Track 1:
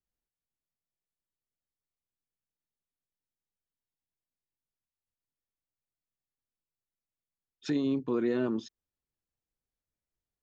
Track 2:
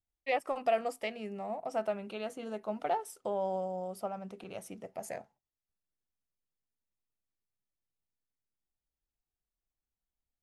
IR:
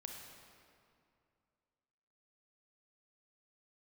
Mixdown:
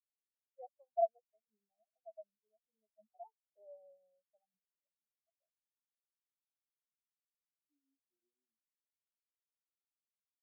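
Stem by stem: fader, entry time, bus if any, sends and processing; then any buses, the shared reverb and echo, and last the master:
-16.0 dB, 0.00 s, no send, dry
-2.5 dB, 0.30 s, no send, dry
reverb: off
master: LPF 2300 Hz; spectral expander 4:1

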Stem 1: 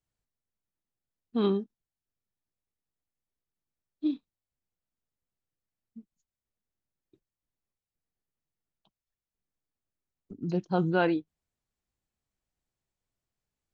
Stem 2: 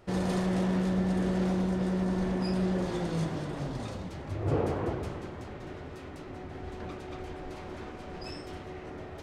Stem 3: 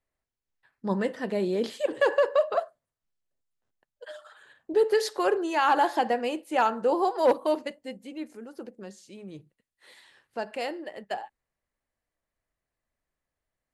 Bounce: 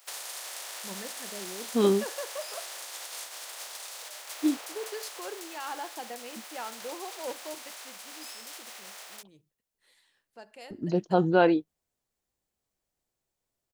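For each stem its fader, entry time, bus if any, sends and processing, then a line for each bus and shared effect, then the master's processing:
-2.5 dB, 0.40 s, no send, bell 540 Hz +8.5 dB 2.3 oct
-6.0 dB, 0.00 s, no send, spectral contrast lowered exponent 0.4; HPF 560 Hz 24 dB/oct; compressor 6:1, threshold -37 dBFS, peak gain reduction 10.5 dB
-16.0 dB, 0.00 s, no send, dry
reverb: off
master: high shelf 3700 Hz +10 dB

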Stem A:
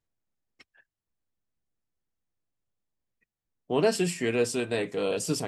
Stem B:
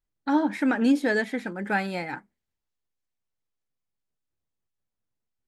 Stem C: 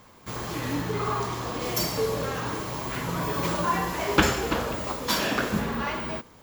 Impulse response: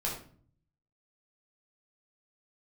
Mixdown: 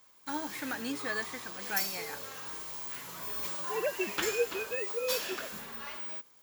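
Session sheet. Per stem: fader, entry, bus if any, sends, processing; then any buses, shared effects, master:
-4.0 dB, 0.00 s, no send, sine-wave speech
-10.5 dB, 0.00 s, no send, dry
-15.0 dB, 0.00 s, no send, dry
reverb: off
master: tilt +3.5 dB/oct

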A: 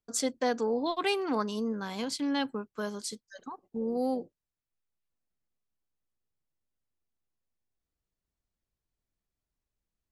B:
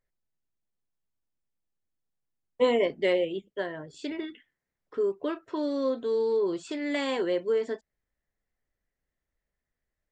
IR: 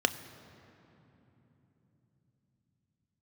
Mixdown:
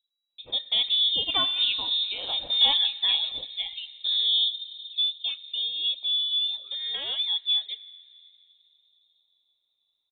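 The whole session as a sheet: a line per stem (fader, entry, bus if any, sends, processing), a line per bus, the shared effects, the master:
-8.5 dB, 0.30 s, send -5 dB, AGC gain up to 5 dB
-2.0 dB, 0.00 s, send -16.5 dB, low-pass opened by the level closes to 530 Hz, open at -23.5 dBFS; reverb removal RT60 0.94 s; high shelf 2400 Hz -8 dB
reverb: on, RT60 3.5 s, pre-delay 3 ms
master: inverted band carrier 3900 Hz

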